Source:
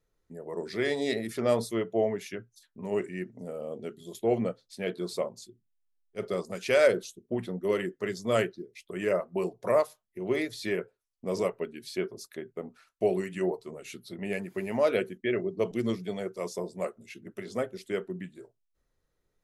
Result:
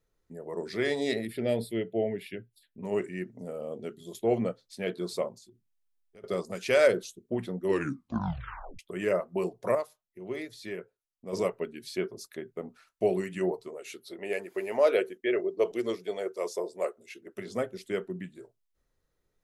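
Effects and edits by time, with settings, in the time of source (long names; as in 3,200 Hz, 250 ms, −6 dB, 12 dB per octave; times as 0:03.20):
0:01.25–0:02.83: phaser with its sweep stopped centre 2,700 Hz, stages 4
0:05.37–0:06.24: downward compressor 5 to 1, threshold −51 dBFS
0:07.63: tape stop 1.16 s
0:09.75–0:11.33: clip gain −7.5 dB
0:13.68–0:17.37: low shelf with overshoot 270 Hz −12.5 dB, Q 1.5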